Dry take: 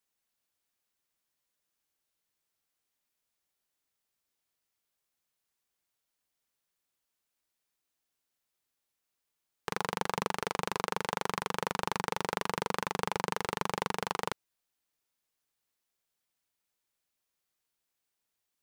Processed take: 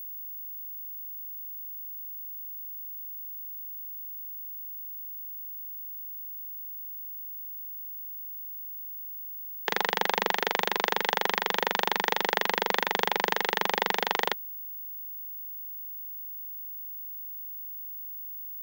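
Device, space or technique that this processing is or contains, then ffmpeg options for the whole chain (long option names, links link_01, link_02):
old television with a line whistle: -af "highpass=frequency=210:width=0.5412,highpass=frequency=210:width=1.3066,equalizer=frequency=270:width_type=q:width=4:gain=-8,equalizer=frequency=800:width_type=q:width=4:gain=3,equalizer=frequency=1200:width_type=q:width=4:gain=-7,equalizer=frequency=1900:width_type=q:width=4:gain=8,equalizer=frequency=3400:width_type=q:width=4:gain=8,lowpass=frequency=6700:width=0.5412,lowpass=frequency=6700:width=1.3066,aeval=exprs='val(0)+0.00794*sin(2*PI*15625*n/s)':channel_layout=same,highpass=100,volume=5.5dB"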